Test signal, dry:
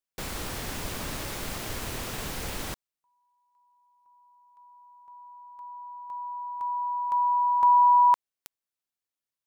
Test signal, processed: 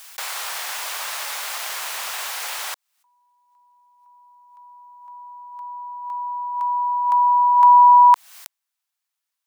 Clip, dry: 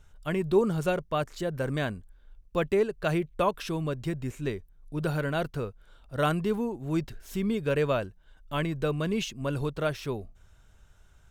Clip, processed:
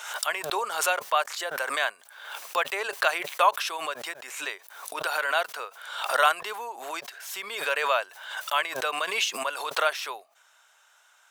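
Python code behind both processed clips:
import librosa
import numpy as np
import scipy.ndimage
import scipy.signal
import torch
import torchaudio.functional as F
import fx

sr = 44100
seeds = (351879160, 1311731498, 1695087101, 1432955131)

y = scipy.signal.sosfilt(scipy.signal.butter(4, 760.0, 'highpass', fs=sr, output='sos'), x)
y = fx.pre_swell(y, sr, db_per_s=60.0)
y = y * librosa.db_to_amplitude(8.5)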